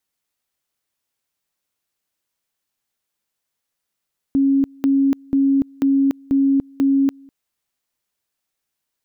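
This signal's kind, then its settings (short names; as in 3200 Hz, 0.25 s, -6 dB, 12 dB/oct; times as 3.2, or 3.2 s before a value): two-level tone 274 Hz -12.5 dBFS, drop 28.5 dB, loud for 0.29 s, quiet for 0.20 s, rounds 6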